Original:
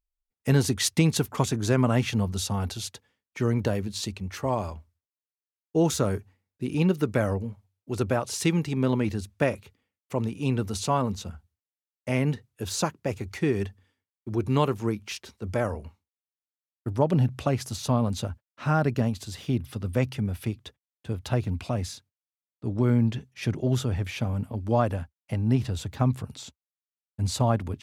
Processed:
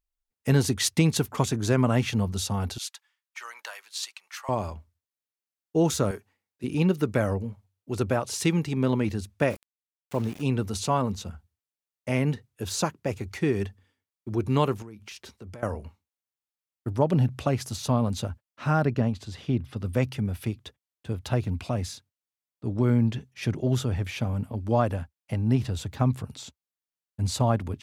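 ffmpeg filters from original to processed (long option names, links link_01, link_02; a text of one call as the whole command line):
ffmpeg -i in.wav -filter_complex "[0:a]asettb=1/sr,asplit=3[link_01][link_02][link_03];[link_01]atrim=end=2.784[link_04];[link_02]atrim=start=2.78:end=4.49,asetpts=PTS-STARTPTS,afade=type=in:duration=0.004:curve=qsin,afade=type=out:start_time=1.706:duration=0.004:curve=qsin,highpass=frequency=1000:width=0.5412,highpass=frequency=1000:width=1.3066[link_05];[link_03]atrim=start=4.486[link_06];[link_04][link_05]acrossfade=duration=0.004:curve1=hsin:curve2=qsin[link_07];[link_07][link_06]acrossfade=duration=0.004:curve1=qsin:curve2=hsin,asettb=1/sr,asplit=3[link_08][link_09][link_10];[link_08]atrim=end=6.114[link_11];[link_09]atrim=start=6.11:end=6.64,asetpts=PTS-STARTPTS,afade=type=in:duration=0.004:curve=qsin,afade=type=out:start_time=0.526:duration=0.004:curve=qsin,highpass=frequency=580:poles=1[link_12];[link_10]atrim=start=6.636[link_13];[link_11][link_12]acrossfade=duration=0.004:curve1=hsin:curve2=qsin[link_14];[link_14][link_13]acrossfade=duration=0.004:curve1=qsin:curve2=hsin,asettb=1/sr,asplit=3[link_15][link_16][link_17];[link_15]atrim=end=9.504[link_18];[link_16]atrim=start=9.5:end=10.42,asetpts=PTS-STARTPTS,afade=type=in:duration=0.004:curve=qsin,afade=type=out:start_time=0.916:duration=0.004:curve=qsin,aeval=exprs='val(0)*gte(abs(val(0)),0.01)':channel_layout=same[link_19];[link_17]atrim=start=10.416[link_20];[link_18][link_19]acrossfade=duration=0.004:curve1=hsin:curve2=qsin[link_21];[link_21][link_20]acrossfade=duration=0.004:curve1=qsin:curve2=hsin,asettb=1/sr,asplit=3[link_22][link_23][link_24];[link_22]atrim=end=14.824[link_25];[link_23]atrim=start=14.82:end=15.63,asetpts=PTS-STARTPTS,afade=type=in:duration=0.004:curve=qsin,afade=type=out:start_time=0.806:duration=0.004:curve=qsin,acompressor=threshold=-38dB:ratio=16:attack=3.2:release=140:knee=1:detection=peak[link_26];[link_24]atrim=start=15.626[link_27];[link_25][link_26]acrossfade=duration=0.004:curve1=hsin:curve2=qsin[link_28];[link_28][link_27]acrossfade=duration=0.004:curve1=qsin:curve2=hsin,asettb=1/sr,asplit=3[link_29][link_30][link_31];[link_29]atrim=end=18.854[link_32];[link_30]atrim=start=18.85:end=19.77,asetpts=PTS-STARTPTS,afade=type=in:duration=0.004:curve=qsin,afade=type=out:start_time=0.916:duration=0.004:curve=qsin,aemphasis=mode=reproduction:type=50fm[link_33];[link_31]atrim=start=19.766[link_34];[link_32][link_33]acrossfade=duration=0.004:curve1=hsin:curve2=qsin[link_35];[link_35][link_34]acrossfade=duration=0.004:curve1=qsin:curve2=hsin" out.wav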